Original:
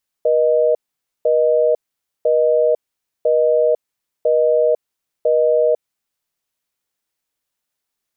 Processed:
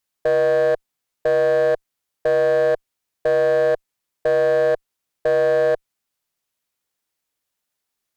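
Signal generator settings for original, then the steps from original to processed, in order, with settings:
call progress tone busy tone, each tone −14.5 dBFS 6.00 s
asymmetric clip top −15.5 dBFS, bottom −12.5 dBFS

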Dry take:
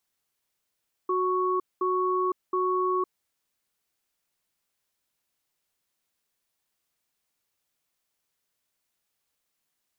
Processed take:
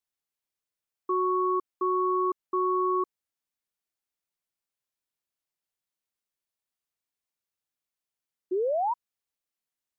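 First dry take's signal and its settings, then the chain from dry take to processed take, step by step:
tone pair in a cadence 368 Hz, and 1,110 Hz, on 0.51 s, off 0.21 s, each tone −25.5 dBFS 2.01 s
sound drawn into the spectrogram rise, 0:08.51–0:08.94, 350–1,000 Hz −26 dBFS
expander for the loud parts 1.5 to 1, over −48 dBFS

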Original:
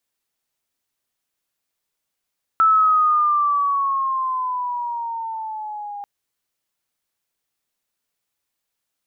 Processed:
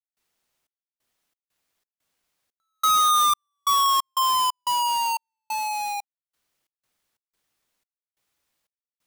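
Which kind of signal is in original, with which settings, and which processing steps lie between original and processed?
pitch glide with a swell sine, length 3.44 s, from 1,320 Hz, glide −8.5 semitones, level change −18 dB, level −11 dB
each half-wave held at its own peak
downward compressor, threshold −19 dBFS
gate pattern ".xxx..xx.xx.xxx." 90 BPM −60 dB

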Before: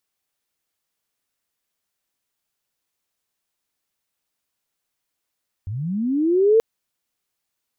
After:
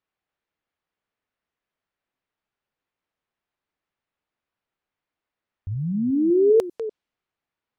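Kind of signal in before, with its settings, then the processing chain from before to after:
glide linear 89 Hz → 460 Hz −25.5 dBFS → −10.5 dBFS 0.93 s
delay that plays each chunk backwards 197 ms, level −13 dB
low-pass that shuts in the quiet parts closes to 2,300 Hz, open at −17.5 dBFS
dynamic equaliser 1,800 Hz, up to −5 dB, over −38 dBFS, Q 0.89

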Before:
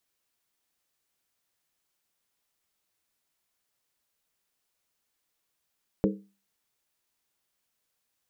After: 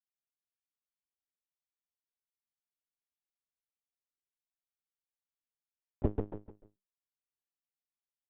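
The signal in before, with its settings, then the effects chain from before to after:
struck skin, lowest mode 198 Hz, decay 0.34 s, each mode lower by 2 dB, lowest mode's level −20 dB
power curve on the samples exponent 1.4
on a send: repeating echo 148 ms, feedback 35%, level −4.5 dB
on the sum: linear-prediction vocoder at 8 kHz pitch kept

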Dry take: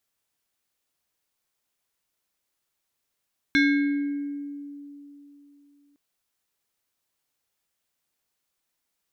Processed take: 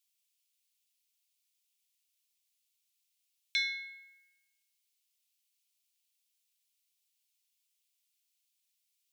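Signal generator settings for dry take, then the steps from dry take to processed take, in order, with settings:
two-operator FM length 2.41 s, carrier 286 Hz, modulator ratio 6.63, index 1.3, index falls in 1.50 s exponential, decay 3.25 s, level −15.5 dB
Butterworth high-pass 2,400 Hz 36 dB per octave

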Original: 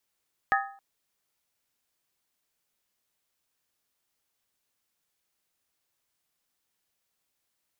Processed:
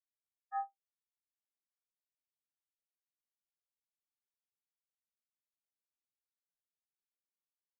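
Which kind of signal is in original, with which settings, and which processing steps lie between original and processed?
struck skin length 0.27 s, lowest mode 790 Hz, modes 4, decay 0.50 s, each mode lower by 1 dB, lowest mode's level −21.5 dB
brickwall limiter −22.5 dBFS
asymmetric clip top −30.5 dBFS, bottom −28.5 dBFS
every bin expanded away from the loudest bin 4 to 1

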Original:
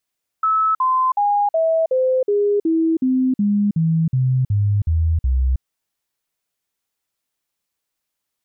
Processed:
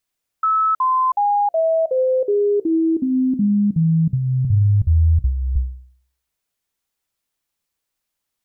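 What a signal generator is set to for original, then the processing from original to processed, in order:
stepped sweep 1,300 Hz down, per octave 3, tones 14, 0.32 s, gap 0.05 s −14 dBFS
low-shelf EQ 85 Hz +7 dB
hum removal 63.5 Hz, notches 11

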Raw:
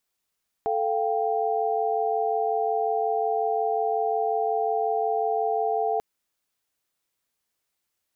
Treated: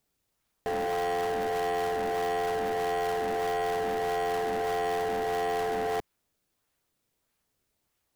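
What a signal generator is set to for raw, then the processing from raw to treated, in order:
held notes A4/F5/G5 sine, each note −26.5 dBFS 5.34 s
low-shelf EQ 210 Hz +8.5 dB
in parallel at −6.5 dB: sample-and-hold swept by an LFO 25×, swing 160% 1.6 Hz
on the sum: soft clipping −27 dBFS

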